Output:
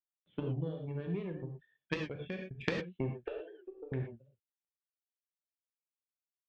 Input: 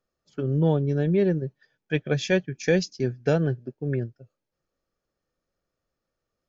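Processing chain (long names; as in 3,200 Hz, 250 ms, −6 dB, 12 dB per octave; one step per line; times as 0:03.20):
downward compressor 12 to 1, threshold −29 dBFS, peak gain reduction 13.5 dB
phaser with its sweep stopped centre 2,700 Hz, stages 4
0:01.94–0:02.51: output level in coarse steps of 17 dB
0:03.14–0:03.92: Butterworth high-pass 330 Hz 72 dB per octave
bit-depth reduction 12 bits, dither none
downsampling to 8,000 Hz
harmonic generator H 3 −12 dB, 4 −29 dB, 6 −43 dB, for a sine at −17 dBFS
reverb reduction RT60 1.4 s
reverb whose tail is shaped and stops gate 140 ms flat, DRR 1.5 dB
wow of a warped record 78 rpm, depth 100 cents
level +6 dB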